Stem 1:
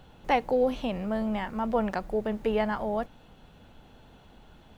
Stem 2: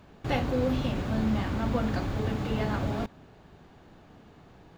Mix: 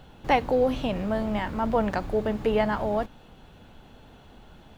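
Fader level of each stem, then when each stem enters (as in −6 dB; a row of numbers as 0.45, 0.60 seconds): +3.0, −8.0 decibels; 0.00, 0.00 seconds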